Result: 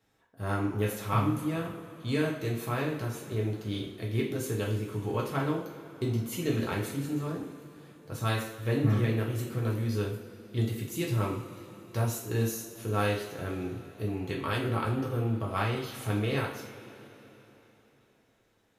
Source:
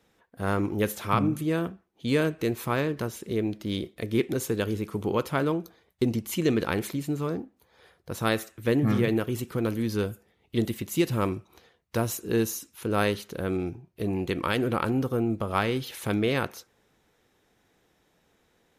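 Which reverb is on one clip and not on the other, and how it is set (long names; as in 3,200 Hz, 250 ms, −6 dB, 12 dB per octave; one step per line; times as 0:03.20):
coupled-rooms reverb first 0.46 s, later 3.8 s, from −18 dB, DRR −3.5 dB
level −9 dB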